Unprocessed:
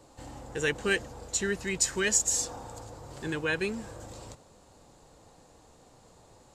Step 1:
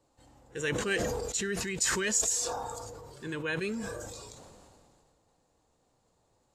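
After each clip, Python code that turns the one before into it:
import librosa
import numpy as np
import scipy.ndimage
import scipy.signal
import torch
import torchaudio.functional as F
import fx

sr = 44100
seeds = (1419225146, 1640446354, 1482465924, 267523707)

y = fx.noise_reduce_blind(x, sr, reduce_db=11)
y = fx.sustainer(y, sr, db_per_s=25.0)
y = F.gain(torch.from_numpy(y), -4.0).numpy()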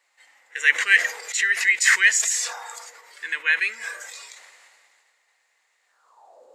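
y = fx.peak_eq(x, sr, hz=530.0, db=9.0, octaves=2.6)
y = fx.filter_sweep_highpass(y, sr, from_hz=2000.0, to_hz=490.0, start_s=5.85, end_s=6.47, q=7.1)
y = F.gain(torch.from_numpy(y), 5.0).numpy()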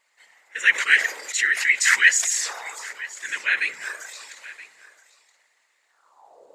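y = fx.whisperise(x, sr, seeds[0])
y = y + 10.0 ** (-18.5 / 20.0) * np.pad(y, (int(973 * sr / 1000.0), 0))[:len(y)]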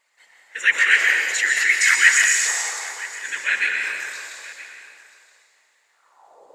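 y = fx.rev_plate(x, sr, seeds[1], rt60_s=1.6, hf_ratio=0.95, predelay_ms=110, drr_db=0.5)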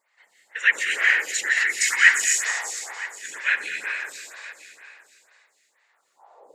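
y = fx.stagger_phaser(x, sr, hz=2.1)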